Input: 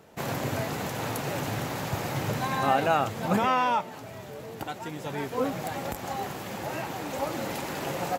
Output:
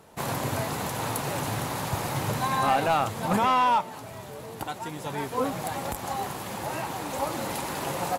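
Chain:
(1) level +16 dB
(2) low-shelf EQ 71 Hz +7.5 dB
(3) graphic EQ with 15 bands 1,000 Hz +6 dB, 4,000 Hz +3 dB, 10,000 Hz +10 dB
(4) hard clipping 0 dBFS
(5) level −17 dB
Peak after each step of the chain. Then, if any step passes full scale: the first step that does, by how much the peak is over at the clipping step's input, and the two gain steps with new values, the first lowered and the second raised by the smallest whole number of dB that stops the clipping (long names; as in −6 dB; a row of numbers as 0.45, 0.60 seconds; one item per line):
+5.5, +5.5, +8.0, 0.0, −17.0 dBFS
step 1, 8.0 dB
step 1 +8 dB, step 5 −9 dB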